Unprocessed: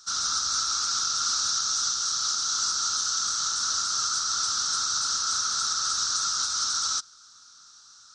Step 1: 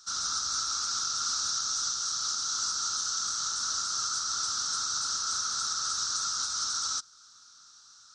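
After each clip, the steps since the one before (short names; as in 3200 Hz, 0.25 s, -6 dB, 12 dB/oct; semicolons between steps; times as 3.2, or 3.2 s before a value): dynamic EQ 2700 Hz, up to -3 dB, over -41 dBFS, Q 0.72; gain -3 dB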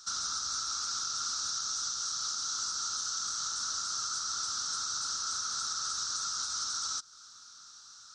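compressor 3:1, threshold -36 dBFS, peak gain reduction 7 dB; gain +2.5 dB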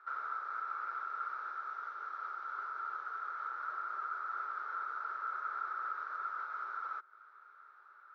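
Chebyshev band-pass 380–2200 Hz, order 4; gain +4 dB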